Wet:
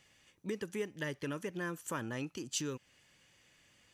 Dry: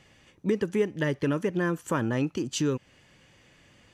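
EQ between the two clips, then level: pre-emphasis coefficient 0.9; high shelf 3000 Hz -9.5 dB; +6.5 dB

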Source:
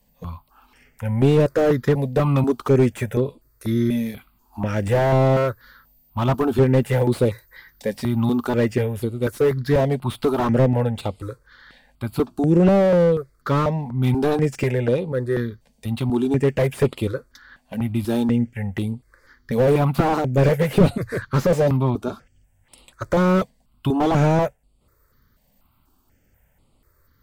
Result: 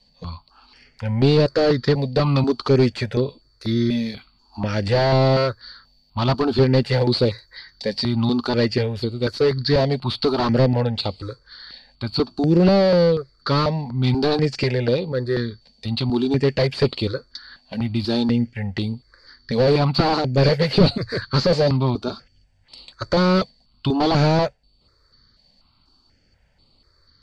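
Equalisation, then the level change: synth low-pass 4500 Hz, resonance Q 15; 0.0 dB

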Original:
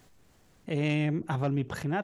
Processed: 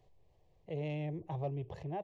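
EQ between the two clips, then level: tape spacing loss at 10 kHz 29 dB; fixed phaser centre 590 Hz, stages 4; -3.5 dB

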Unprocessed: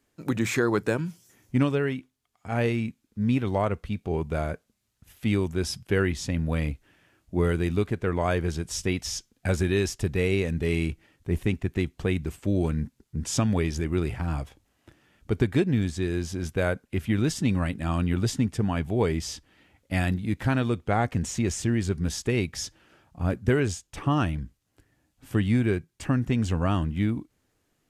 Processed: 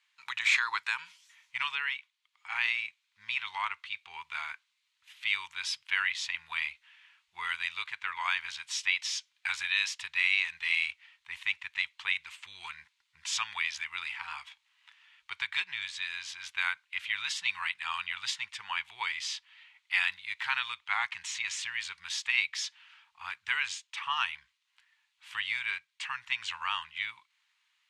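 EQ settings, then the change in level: elliptic high-pass 940 Hz, stop band 40 dB; LPF 6500 Hz 12 dB/oct; band shelf 2900 Hz +8 dB 1.3 oct; 0.0 dB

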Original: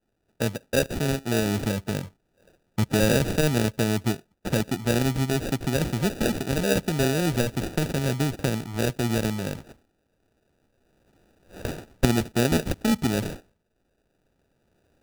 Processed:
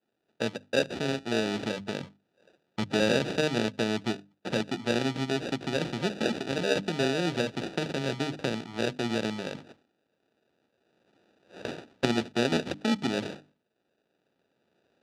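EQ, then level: BPF 190–4900 Hz; bell 3600 Hz +4 dB 0.85 oct; notches 50/100/150/200/250/300 Hz; -2.5 dB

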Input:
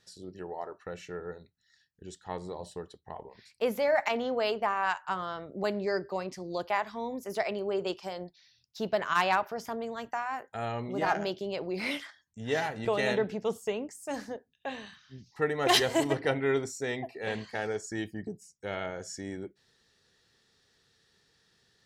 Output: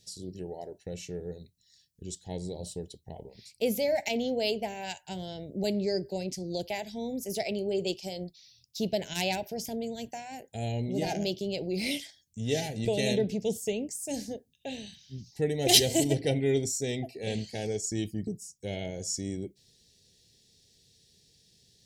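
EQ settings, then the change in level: Butterworth band-stop 1200 Hz, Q 0.84; tone controls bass +8 dB, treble +11 dB; bell 1800 Hz -6.5 dB 0.2 oct; 0.0 dB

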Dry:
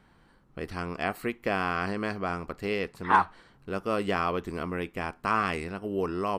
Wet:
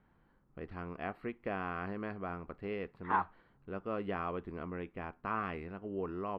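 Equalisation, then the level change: air absorption 460 m; -7.5 dB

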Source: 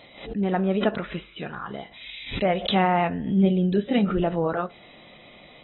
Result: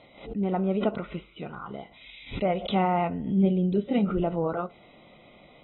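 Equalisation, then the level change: Butterworth band-stop 1700 Hz, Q 4.5; air absorption 56 m; high shelf 2700 Hz -8.5 dB; -2.5 dB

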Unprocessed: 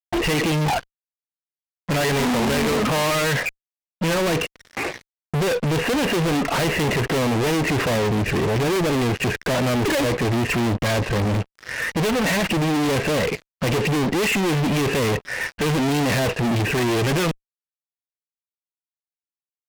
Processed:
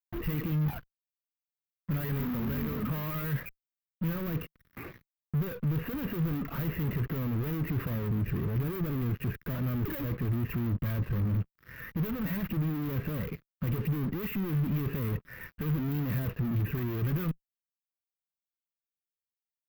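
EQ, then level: EQ curve 160 Hz 0 dB, 780 Hz -20 dB, 1200 Hz -10 dB, 8900 Hz -28 dB, 15000 Hz +7 dB; -5.5 dB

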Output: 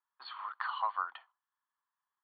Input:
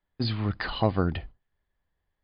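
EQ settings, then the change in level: ladder high-pass 890 Hz, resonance 60%; rippled Chebyshev low-pass 4500 Hz, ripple 9 dB; bell 1400 Hz +6.5 dB 1.7 oct; 0.0 dB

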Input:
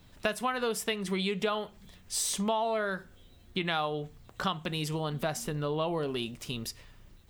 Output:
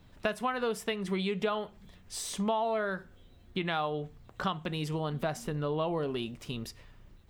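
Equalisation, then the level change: high shelf 3500 Hz -9 dB; 0.0 dB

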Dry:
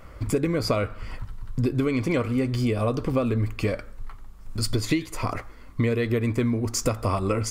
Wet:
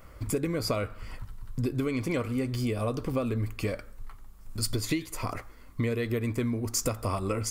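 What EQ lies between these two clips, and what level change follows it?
high shelf 8300 Hz +11 dB; -5.5 dB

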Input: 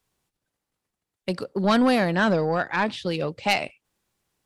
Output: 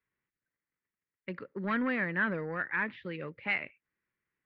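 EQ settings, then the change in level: ladder low-pass 2200 Hz, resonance 60%; low shelf 67 Hz -10.5 dB; bell 730 Hz -12.5 dB 0.59 oct; 0.0 dB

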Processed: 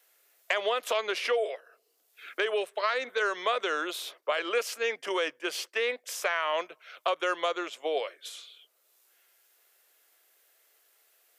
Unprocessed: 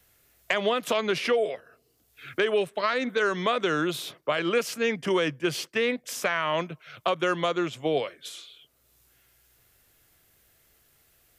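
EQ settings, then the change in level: HPF 430 Hz 24 dB/oct; -2.0 dB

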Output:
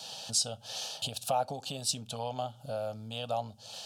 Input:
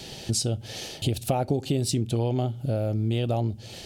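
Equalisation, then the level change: weighting filter A; dynamic EQ 2200 Hz, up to +5 dB, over -48 dBFS, Q 0.85; fixed phaser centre 850 Hz, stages 4; 0.0 dB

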